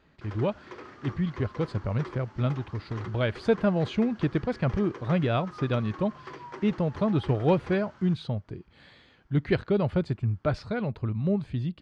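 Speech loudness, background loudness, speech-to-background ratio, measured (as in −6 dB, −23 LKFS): −28.5 LKFS, −45.0 LKFS, 16.5 dB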